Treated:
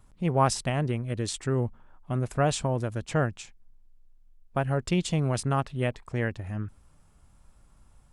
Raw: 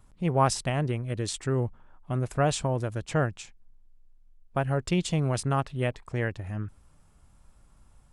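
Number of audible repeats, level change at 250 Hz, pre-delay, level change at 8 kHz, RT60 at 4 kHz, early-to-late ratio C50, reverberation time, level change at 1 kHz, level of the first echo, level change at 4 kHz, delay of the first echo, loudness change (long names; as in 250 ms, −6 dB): no echo audible, +0.5 dB, no reverb audible, 0.0 dB, no reverb audible, no reverb audible, no reverb audible, 0.0 dB, no echo audible, 0.0 dB, no echo audible, 0.0 dB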